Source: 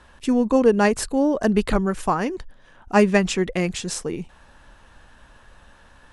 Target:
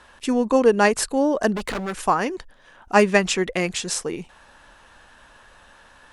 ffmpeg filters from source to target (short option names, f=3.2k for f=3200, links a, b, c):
-filter_complex "[0:a]asplit=3[a][b][c];[a]afade=t=out:st=1.55:d=0.02[d];[b]asoftclip=type=hard:threshold=-24dB,afade=t=in:st=1.55:d=0.02,afade=t=out:st=2.05:d=0.02[e];[c]afade=t=in:st=2.05:d=0.02[f];[d][e][f]amix=inputs=3:normalize=0,lowshelf=f=270:g=-11,volume=3.5dB"